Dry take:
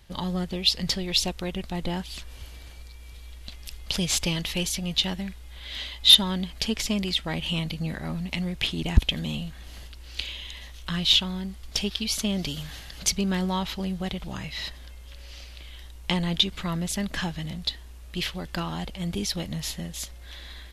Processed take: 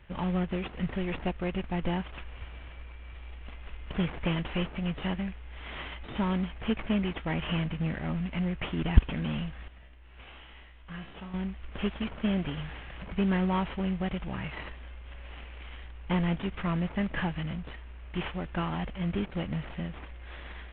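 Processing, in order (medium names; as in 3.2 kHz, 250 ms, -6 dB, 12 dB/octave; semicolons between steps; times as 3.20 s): CVSD coder 16 kbps; 9.68–11.34 s: feedback comb 65 Hz, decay 0.78 s, harmonics all, mix 80%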